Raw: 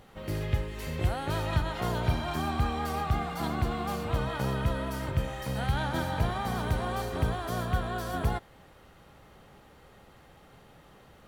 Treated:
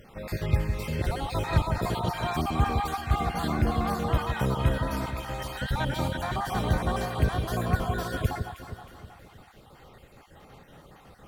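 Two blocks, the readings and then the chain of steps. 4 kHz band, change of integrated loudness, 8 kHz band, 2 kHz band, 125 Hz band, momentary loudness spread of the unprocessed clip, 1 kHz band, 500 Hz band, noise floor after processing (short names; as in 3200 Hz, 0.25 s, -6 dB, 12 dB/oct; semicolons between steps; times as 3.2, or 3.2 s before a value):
+2.0 dB, +2.5 dB, +2.5 dB, +2.0 dB, +2.5 dB, 3 LU, +3.0 dB, +2.0 dB, -53 dBFS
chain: random spectral dropouts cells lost 38%; echo with dull and thin repeats by turns 0.158 s, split 1000 Hz, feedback 67%, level -6 dB; gain +4 dB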